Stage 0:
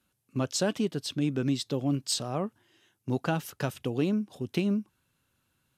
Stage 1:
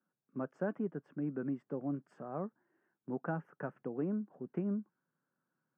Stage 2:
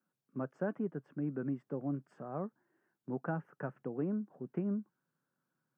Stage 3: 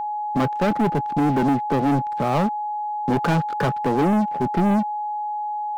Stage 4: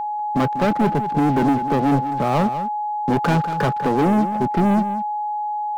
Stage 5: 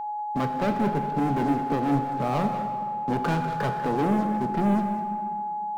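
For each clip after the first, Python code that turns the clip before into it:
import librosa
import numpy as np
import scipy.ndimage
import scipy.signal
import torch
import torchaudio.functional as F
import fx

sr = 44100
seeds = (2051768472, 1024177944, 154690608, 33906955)

y1 = scipy.signal.sosfilt(scipy.signal.ellip(3, 1.0, 40, [160.0, 1600.0], 'bandpass', fs=sr, output='sos'), x)
y1 = y1 * librosa.db_to_amplitude(-7.5)
y2 = fx.peak_eq(y1, sr, hz=130.0, db=4.5, octaves=0.38)
y3 = fx.env_lowpass_down(y2, sr, base_hz=2000.0, full_db=-34.0)
y3 = fx.leveller(y3, sr, passes=5)
y3 = y3 + 10.0 ** (-31.0 / 20.0) * np.sin(2.0 * np.pi * 840.0 * np.arange(len(y3)) / sr)
y3 = y3 * librosa.db_to_amplitude(7.0)
y4 = y3 + 10.0 ** (-11.5 / 20.0) * np.pad(y3, (int(195 * sr / 1000.0), 0))[:len(y3)]
y4 = y4 * librosa.db_to_amplitude(1.5)
y5 = fx.rev_plate(y4, sr, seeds[0], rt60_s=2.3, hf_ratio=0.75, predelay_ms=0, drr_db=5.0)
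y5 = y5 * librosa.db_to_amplitude(-7.5)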